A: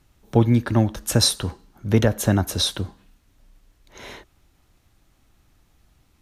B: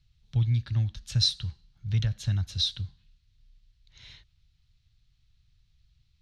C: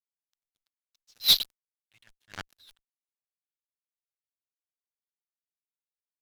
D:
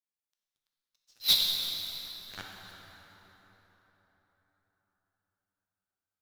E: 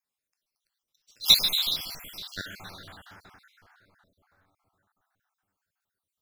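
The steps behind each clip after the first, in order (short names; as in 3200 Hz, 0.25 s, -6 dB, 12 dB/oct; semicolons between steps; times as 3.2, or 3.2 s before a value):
EQ curve 140 Hz 0 dB, 230 Hz -20 dB, 420 Hz -27 dB, 960 Hz -21 dB, 4200 Hz +2 dB, 13000 Hz -29 dB; gain -4.5 dB
band-pass sweep 6700 Hz -> 610 Hz, 0.77–3.67; fuzz box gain 43 dB, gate -50 dBFS; attack slew limiter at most 360 dB/s
plate-style reverb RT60 4.4 s, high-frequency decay 0.6×, DRR -1.5 dB; gain -4.5 dB
random spectral dropouts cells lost 50%; gain +8.5 dB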